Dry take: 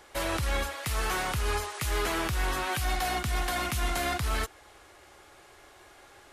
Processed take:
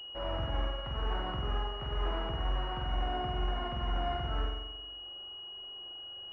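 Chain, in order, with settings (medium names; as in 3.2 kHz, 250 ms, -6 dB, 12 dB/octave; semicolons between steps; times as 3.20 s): spring tank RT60 1 s, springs 44 ms, chirp 40 ms, DRR -1.5 dB; class-D stage that switches slowly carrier 2.9 kHz; trim -8 dB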